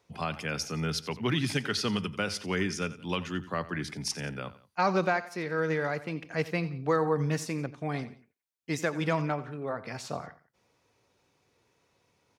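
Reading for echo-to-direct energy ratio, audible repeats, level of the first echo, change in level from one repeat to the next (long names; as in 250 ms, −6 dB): −15.5 dB, 2, −16.5 dB, −7.5 dB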